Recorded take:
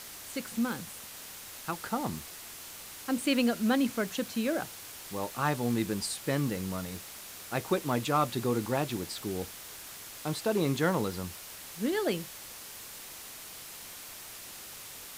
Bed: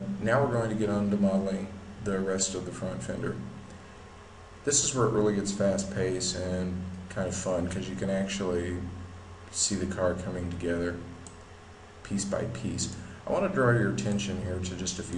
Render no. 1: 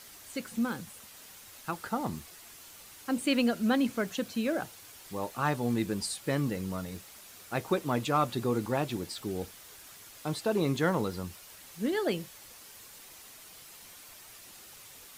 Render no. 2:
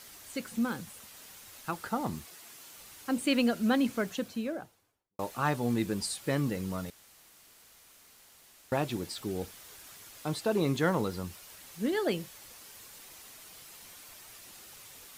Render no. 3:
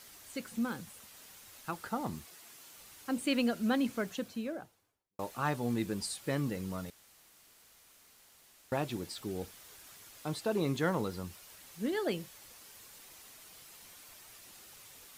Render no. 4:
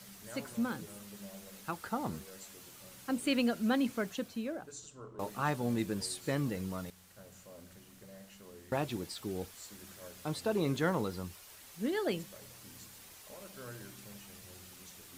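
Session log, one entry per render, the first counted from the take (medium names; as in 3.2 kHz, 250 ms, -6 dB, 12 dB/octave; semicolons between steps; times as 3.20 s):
noise reduction 7 dB, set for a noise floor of -46 dBFS
2.24–2.78 s: high-pass 130 Hz; 3.94–5.19 s: studio fade out; 6.90–8.72 s: room tone
trim -3.5 dB
add bed -24 dB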